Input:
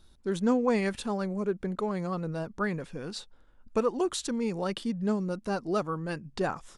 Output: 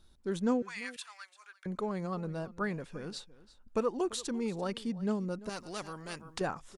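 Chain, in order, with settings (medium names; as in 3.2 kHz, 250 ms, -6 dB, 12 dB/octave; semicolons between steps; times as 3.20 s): 0.62–1.66 s: high-pass 1.4 kHz 24 dB/octave; delay 341 ms -19 dB; 5.49–6.41 s: spectrum-flattening compressor 2:1; trim -4 dB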